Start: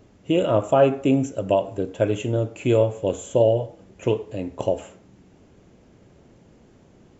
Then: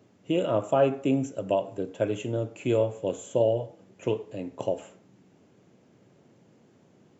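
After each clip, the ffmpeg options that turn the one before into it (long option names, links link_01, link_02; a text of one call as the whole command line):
ffmpeg -i in.wav -af "highpass=frequency=110:width=0.5412,highpass=frequency=110:width=1.3066,volume=-5.5dB" out.wav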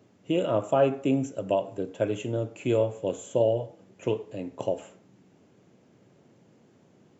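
ffmpeg -i in.wav -af anull out.wav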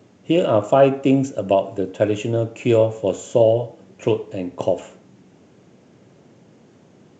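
ffmpeg -i in.wav -af "volume=8.5dB" -ar 16000 -c:a g722 out.g722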